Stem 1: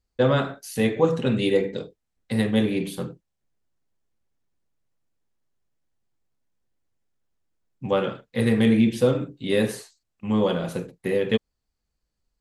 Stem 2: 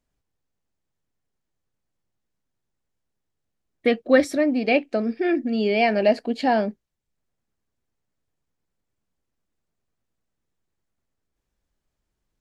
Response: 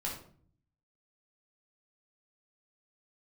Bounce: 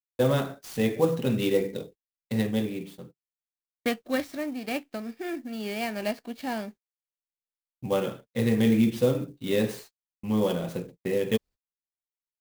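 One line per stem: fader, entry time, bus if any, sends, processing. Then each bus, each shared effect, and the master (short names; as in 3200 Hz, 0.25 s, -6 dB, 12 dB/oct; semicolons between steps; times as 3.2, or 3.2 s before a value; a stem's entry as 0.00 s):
-3.0 dB, 0.00 s, no send, bell 1400 Hz -4.5 dB 0.95 oct; auto duck -23 dB, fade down 1.45 s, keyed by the second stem
3.75 s -4.5 dB -> 4.08 s -11.5 dB, 0.00 s, no send, spectral whitening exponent 0.6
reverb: off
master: gate -46 dBFS, range -38 dB; clock jitter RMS 0.022 ms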